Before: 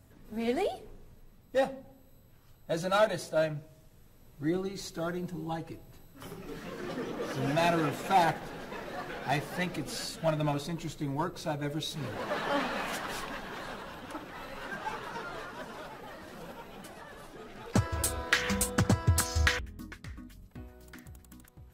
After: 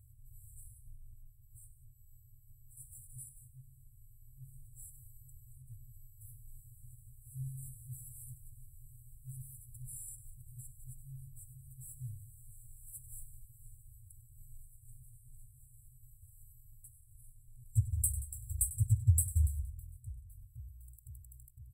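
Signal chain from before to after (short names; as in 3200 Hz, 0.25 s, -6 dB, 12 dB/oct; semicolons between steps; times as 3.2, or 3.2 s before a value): on a send: tapped delay 98/180 ms -14.5/-18 dB; on the sum: FFT band-reject 130–7600 Hz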